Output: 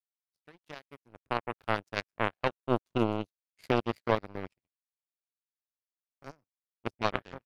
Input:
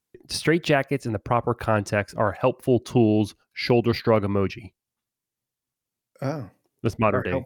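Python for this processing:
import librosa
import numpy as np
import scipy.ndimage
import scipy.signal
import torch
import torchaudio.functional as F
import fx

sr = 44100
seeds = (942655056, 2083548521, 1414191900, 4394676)

y = fx.fade_in_head(x, sr, length_s=1.43)
y = fx.echo_wet_highpass(y, sr, ms=127, feedback_pct=78, hz=1700.0, wet_db=-18.5)
y = fx.power_curve(y, sr, exponent=3.0)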